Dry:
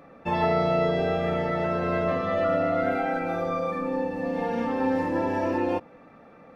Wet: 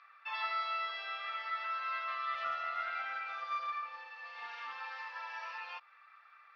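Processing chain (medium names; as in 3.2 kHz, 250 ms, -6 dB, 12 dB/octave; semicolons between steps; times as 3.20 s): elliptic band-pass 1.2–4.9 kHz, stop band 60 dB; dynamic bell 1.7 kHz, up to -5 dB, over -49 dBFS, Q 1.8; 2.34–4.80 s: loudspeaker Doppler distortion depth 0.43 ms; trim -1 dB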